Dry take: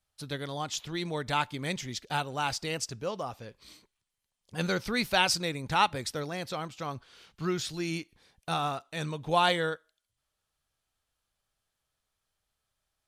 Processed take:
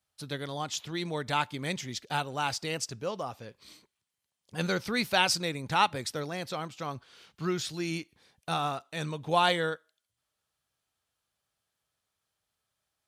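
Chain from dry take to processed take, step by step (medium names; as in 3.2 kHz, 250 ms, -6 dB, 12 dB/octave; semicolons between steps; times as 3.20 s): high-pass 85 Hz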